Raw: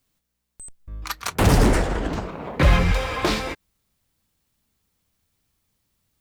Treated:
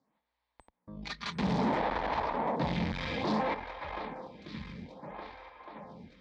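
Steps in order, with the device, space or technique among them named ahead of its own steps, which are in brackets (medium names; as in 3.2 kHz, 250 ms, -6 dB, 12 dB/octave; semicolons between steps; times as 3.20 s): 0.96–1.66 s: comb 4.9 ms, depth 74%; shuffle delay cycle 1215 ms, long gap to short 1.5:1, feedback 50%, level -19.5 dB; vibe pedal into a guitar amplifier (lamp-driven phase shifter 0.6 Hz; valve stage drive 34 dB, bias 0.55; cabinet simulation 100–4000 Hz, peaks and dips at 100 Hz -10 dB, 210 Hz +3 dB, 380 Hz -7 dB, 910 Hz +7 dB, 1.4 kHz -7 dB, 2.8 kHz -8 dB); trim +7 dB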